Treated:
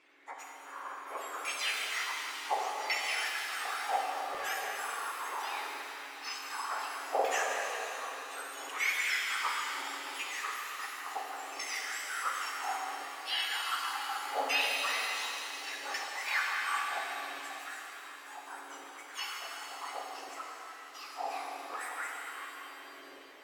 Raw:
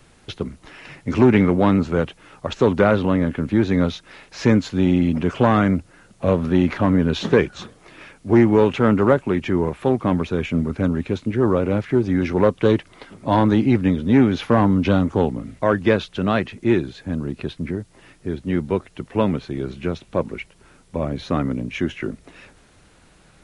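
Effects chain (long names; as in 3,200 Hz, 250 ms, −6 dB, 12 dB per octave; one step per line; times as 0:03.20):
frequency axis turned over on the octave scale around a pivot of 1,700 Hz
bass and treble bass +13 dB, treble −2 dB
in parallel at −2 dB: compressor whose output falls as the input rises −27 dBFS
on the sum: auto-filter band-pass saw down 0.69 Hz 520–2,600 Hz
reverb with rising layers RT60 3.5 s, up +7 semitones, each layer −8 dB, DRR −1.5 dB
level −3.5 dB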